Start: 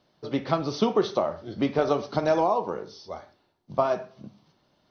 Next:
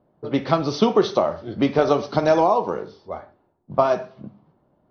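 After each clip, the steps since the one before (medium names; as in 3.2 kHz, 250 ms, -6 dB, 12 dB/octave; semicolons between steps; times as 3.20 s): level-controlled noise filter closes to 810 Hz, open at -23.5 dBFS; trim +5.5 dB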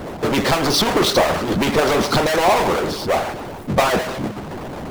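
Schroeder reverb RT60 0.3 s, combs from 31 ms, DRR 12 dB; power-law waveshaper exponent 0.35; harmonic-percussive split harmonic -16 dB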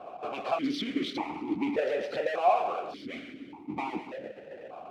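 stepped vowel filter 1.7 Hz; trim -3 dB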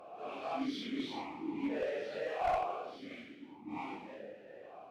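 phase randomisation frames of 200 ms; one-sided clip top -22 dBFS; trim -7.5 dB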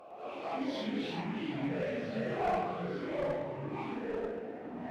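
ever faster or slower copies 106 ms, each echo -4 st, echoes 3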